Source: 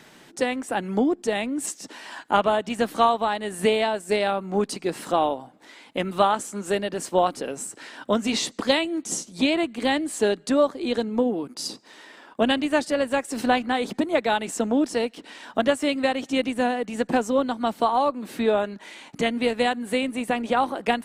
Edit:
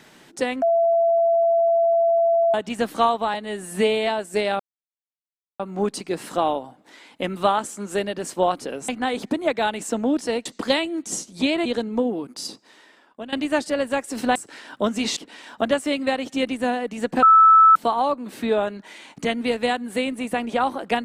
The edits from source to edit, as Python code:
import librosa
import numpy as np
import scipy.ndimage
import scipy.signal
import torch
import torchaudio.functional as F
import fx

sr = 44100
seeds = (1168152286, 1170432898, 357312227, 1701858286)

y = fx.edit(x, sr, fx.bleep(start_s=0.62, length_s=1.92, hz=672.0, db=-15.0),
    fx.stretch_span(start_s=3.34, length_s=0.49, factor=1.5),
    fx.insert_silence(at_s=4.35, length_s=1.0),
    fx.swap(start_s=7.64, length_s=0.81, other_s=13.56, other_length_s=1.57),
    fx.cut(start_s=9.65, length_s=1.21),
    fx.fade_out_to(start_s=11.53, length_s=1.0, floor_db=-18.5),
    fx.bleep(start_s=17.19, length_s=0.53, hz=1310.0, db=-8.5), tone=tone)